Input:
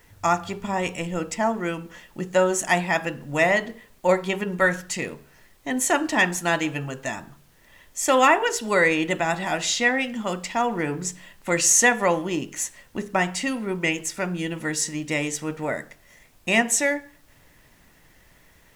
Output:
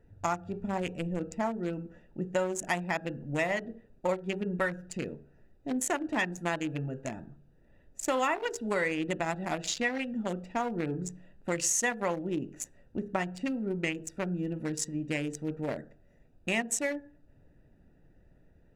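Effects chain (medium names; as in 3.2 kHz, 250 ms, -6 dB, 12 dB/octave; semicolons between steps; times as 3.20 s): local Wiener filter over 41 samples; compression 3:1, threshold -26 dBFS, peak gain reduction 10 dB; trim -2 dB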